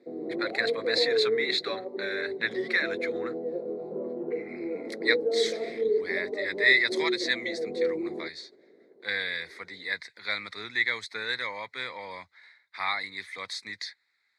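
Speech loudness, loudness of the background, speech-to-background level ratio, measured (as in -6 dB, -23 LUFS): -29.5 LUFS, -31.5 LUFS, 2.0 dB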